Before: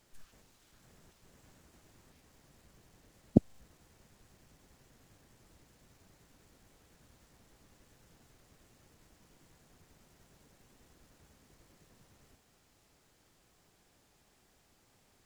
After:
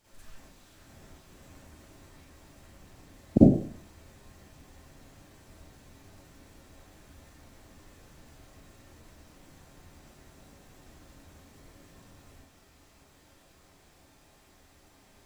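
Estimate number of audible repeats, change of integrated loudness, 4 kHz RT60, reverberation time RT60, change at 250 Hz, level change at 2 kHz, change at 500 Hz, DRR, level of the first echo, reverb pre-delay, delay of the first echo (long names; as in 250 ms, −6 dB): no echo audible, +7.0 dB, 0.30 s, 0.50 s, +9.5 dB, +9.0 dB, +9.5 dB, −10.5 dB, no echo audible, 39 ms, no echo audible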